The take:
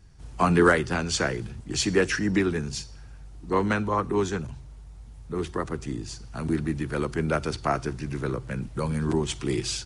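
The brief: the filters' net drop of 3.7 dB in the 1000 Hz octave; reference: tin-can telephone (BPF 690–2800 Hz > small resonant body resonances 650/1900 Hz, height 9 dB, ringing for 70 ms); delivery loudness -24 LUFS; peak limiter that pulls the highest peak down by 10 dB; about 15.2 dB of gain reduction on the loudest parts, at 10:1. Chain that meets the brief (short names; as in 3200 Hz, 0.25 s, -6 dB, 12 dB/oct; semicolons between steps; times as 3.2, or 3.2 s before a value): bell 1000 Hz -3.5 dB; compressor 10:1, threshold -30 dBFS; limiter -29.5 dBFS; BPF 690–2800 Hz; small resonant body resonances 650/1900 Hz, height 9 dB, ringing for 70 ms; gain +23 dB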